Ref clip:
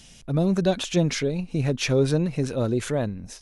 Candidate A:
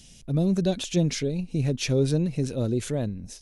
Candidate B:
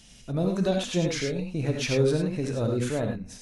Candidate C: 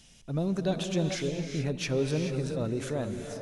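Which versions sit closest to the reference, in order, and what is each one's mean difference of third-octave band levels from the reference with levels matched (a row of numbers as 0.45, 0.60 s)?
A, B, C; 2.5, 4.5, 5.5 dB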